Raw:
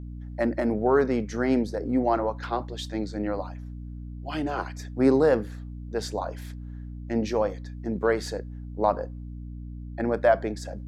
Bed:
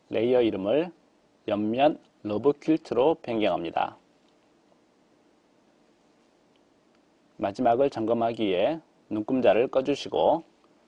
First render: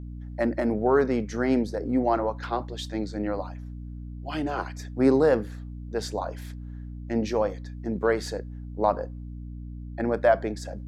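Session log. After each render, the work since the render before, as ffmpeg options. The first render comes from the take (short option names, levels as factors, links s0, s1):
-af anull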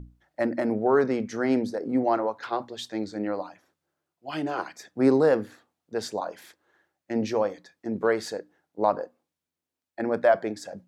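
-af "bandreject=f=60:t=h:w=6,bandreject=f=120:t=h:w=6,bandreject=f=180:t=h:w=6,bandreject=f=240:t=h:w=6,bandreject=f=300:t=h:w=6"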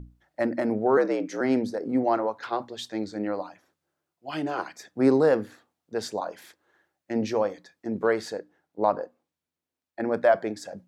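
-filter_complex "[0:a]asettb=1/sr,asplit=3[s0][s1][s2];[s0]atrim=end=0.974[s3];[s1]atrim=start=0.97:end=1.41,asetpts=PTS-STARTPTS,afade=t=in:d=0.004:c=qsin,afade=t=out:st=0.436:d=0.004:c=qsin,afreqshift=69[s4];[s2]atrim=start=1.406[s5];[s3][s4]acrossfade=d=0.004:c1=hsin:c2=qsin[s6];[s6][s5]acrossfade=d=0.004:c1=qsin:c2=hsin,asettb=1/sr,asplit=3[s7][s8][s9];[s7]atrim=end=8.214[s10];[s8]atrim=start=8.21:end=10.09,asetpts=PTS-STARTPTS,afade=t=in:d=0.004:c=qsin,afade=t=out:st=1.876:d=0.004:c=qsin,highshelf=f=4800:g=-4.5[s11];[s9]atrim=start=10.086[s12];[s10][s11]acrossfade=d=0.004:c1=hsin:c2=qsin[s13];[s13][s12]acrossfade=d=0.004:c1=qsin:c2=hsin"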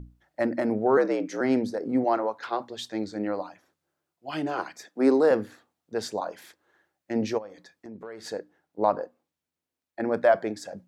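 -filter_complex "[0:a]asettb=1/sr,asplit=3[s0][s1][s2];[s0]atrim=end=2.044[s3];[s1]atrim=start=2.04:end=2.7,asetpts=PTS-STARTPTS,afade=t=in:d=0.004:c=qsin,afade=t=out:st=0.656:d=0.004:c=qsin,highpass=f=210:p=1[s4];[s2]atrim=start=2.696[s5];[s3][s4]acrossfade=d=0.004:c1=hsin:c2=qsin[s6];[s6][s5]acrossfade=d=0.004:c1=qsin:c2=hsin,asettb=1/sr,asplit=3[s7][s8][s9];[s7]atrim=end=4.854[s10];[s8]atrim=start=4.85:end=5.31,asetpts=PTS-STARTPTS,afade=t=in:d=0.004:c=qsin,afade=t=out:st=0.456:d=0.004:c=qsin,highpass=f=220:w=0.5412,highpass=f=220:w=1.3066[s11];[s9]atrim=start=5.306[s12];[s10][s11]acrossfade=d=0.004:c1=hsin:c2=qsin[s13];[s13][s12]acrossfade=d=0.004:c1=qsin:c2=hsin,asplit=3[s14][s15][s16];[s14]afade=t=out:st=7.37:d=0.02[s17];[s15]acompressor=threshold=0.00794:ratio=3:attack=3.2:release=140:knee=1:detection=peak,afade=t=in:st=7.37:d=0.02,afade=t=out:st=8.24:d=0.02[s18];[s16]afade=t=in:st=8.24:d=0.02[s19];[s17][s18][s19]amix=inputs=3:normalize=0"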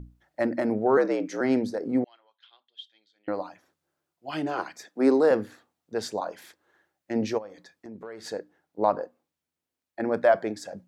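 -filter_complex "[0:a]asettb=1/sr,asplit=3[s0][s1][s2];[s0]atrim=end=2.044[s3];[s1]atrim=start=2.04:end=3.28,asetpts=PTS-STARTPTS,afade=t=in:d=0.004:c=qsin,afade=t=out:st=1.236:d=0.004:c=qsin,bandpass=f=3200:t=q:w=15[s4];[s2]atrim=start=3.276[s5];[s3][s4]acrossfade=d=0.004:c1=hsin:c2=qsin[s6];[s6][s5]acrossfade=d=0.004:c1=qsin:c2=hsin"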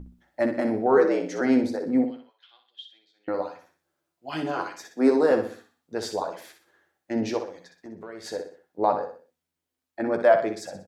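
-filter_complex "[0:a]asplit=2[s0][s1];[s1]adelay=12,volume=0.473[s2];[s0][s2]amix=inputs=2:normalize=0,aecho=1:1:62|124|186|248:0.398|0.151|0.0575|0.0218"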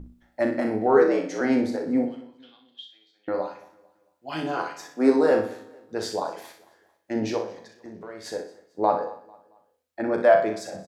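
-filter_complex "[0:a]asplit=2[s0][s1];[s1]adelay=37,volume=0.447[s2];[s0][s2]amix=inputs=2:normalize=0,aecho=1:1:224|448|672:0.0841|0.032|0.0121"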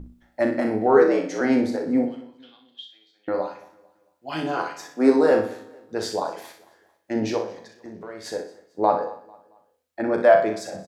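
-af "volume=1.26"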